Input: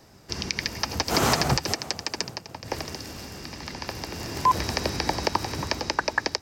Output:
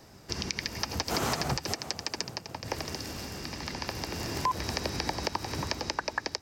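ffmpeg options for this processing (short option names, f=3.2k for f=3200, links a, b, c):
-af "acompressor=threshold=-30dB:ratio=2.5"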